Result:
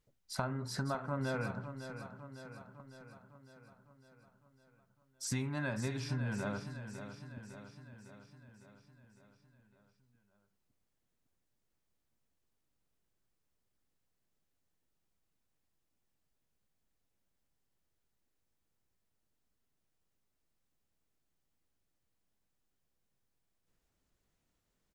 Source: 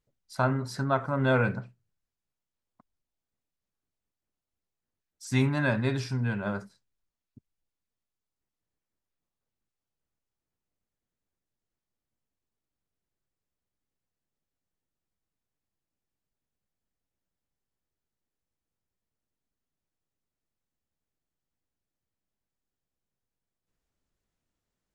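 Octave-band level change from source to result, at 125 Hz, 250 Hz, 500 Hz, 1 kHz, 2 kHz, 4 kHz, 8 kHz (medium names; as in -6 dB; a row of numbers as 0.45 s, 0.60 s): -9.0 dB, -9.0 dB, -10.5 dB, -10.0 dB, -10.0 dB, -5.0 dB, +1.5 dB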